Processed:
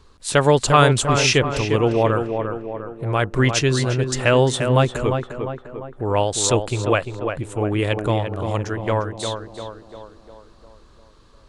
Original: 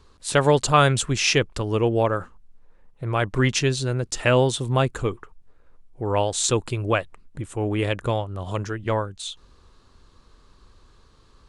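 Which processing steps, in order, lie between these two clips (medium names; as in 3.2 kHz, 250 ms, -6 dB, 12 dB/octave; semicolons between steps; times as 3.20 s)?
tape echo 349 ms, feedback 58%, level -5 dB, low-pass 1.8 kHz; trim +2.5 dB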